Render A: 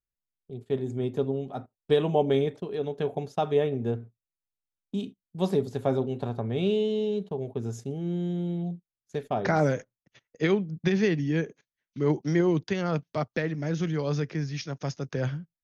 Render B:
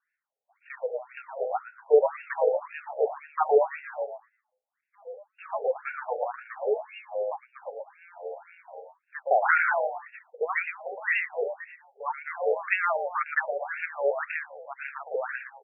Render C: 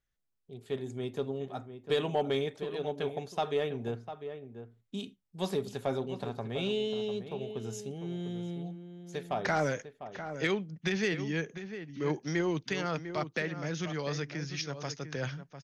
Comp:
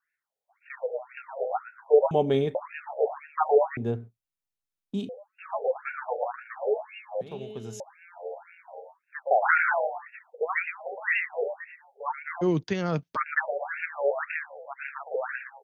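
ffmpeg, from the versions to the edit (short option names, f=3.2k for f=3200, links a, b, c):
-filter_complex "[0:a]asplit=3[a][b][c];[1:a]asplit=5[d][e][f][g][h];[d]atrim=end=2.112[i];[a]atrim=start=2.108:end=2.552[j];[e]atrim=start=2.548:end=3.772[k];[b]atrim=start=3.768:end=5.092[l];[f]atrim=start=5.088:end=7.212[m];[2:a]atrim=start=7.208:end=7.802[n];[g]atrim=start=7.798:end=12.43[o];[c]atrim=start=12.41:end=13.17[p];[h]atrim=start=13.15[q];[i][j]acrossfade=d=0.004:c1=hsin:c2=hsin[r];[r][k]acrossfade=d=0.004:c1=hsin:c2=hsin[s];[s][l]acrossfade=d=0.004:c1=hsin:c2=hsin[t];[t][m]acrossfade=d=0.004:c1=hsin:c2=hsin[u];[u][n]acrossfade=d=0.004:c1=hsin:c2=hsin[v];[v][o]acrossfade=d=0.004:c1=hsin:c2=hsin[w];[w][p]acrossfade=d=0.02:c1=tri:c2=tri[x];[x][q]acrossfade=d=0.02:c1=tri:c2=tri"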